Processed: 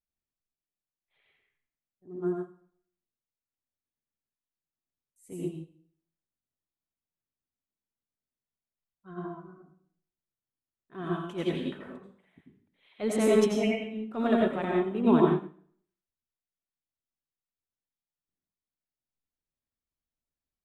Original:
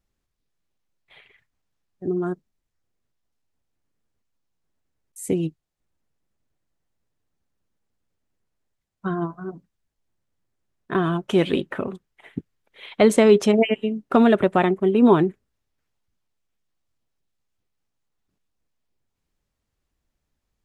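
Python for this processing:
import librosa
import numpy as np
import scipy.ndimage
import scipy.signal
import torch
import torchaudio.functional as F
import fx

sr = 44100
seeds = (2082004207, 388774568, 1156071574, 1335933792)

y = fx.transient(x, sr, attack_db=-8, sustain_db=2)
y = fx.rev_plate(y, sr, seeds[0], rt60_s=0.62, hf_ratio=0.9, predelay_ms=75, drr_db=-2.0)
y = fx.upward_expand(y, sr, threshold_db=-33.0, expansion=1.5)
y = y * 10.0 ** (-8.5 / 20.0)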